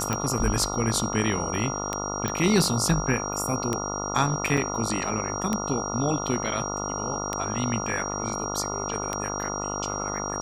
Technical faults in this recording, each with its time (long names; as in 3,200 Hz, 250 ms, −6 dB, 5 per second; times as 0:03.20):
mains buzz 50 Hz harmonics 28 −32 dBFS
scratch tick 33 1/3 rpm −11 dBFS
whistle 5,700 Hz −33 dBFS
0:02.28: click −13 dBFS
0:04.57: drop-out 4.5 ms